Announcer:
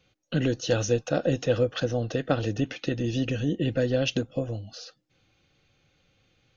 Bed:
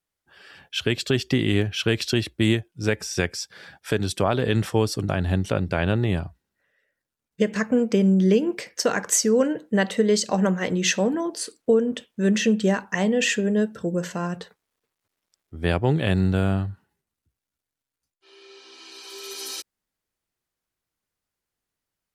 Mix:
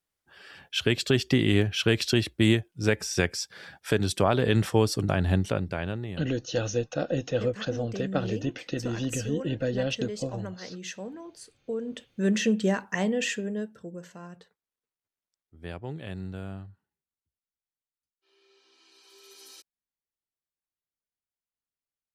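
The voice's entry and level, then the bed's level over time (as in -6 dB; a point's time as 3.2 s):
5.85 s, -3.5 dB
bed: 5.37 s -1 dB
6.29 s -16.5 dB
11.63 s -16.5 dB
12.11 s -4 dB
13 s -4 dB
14.03 s -16 dB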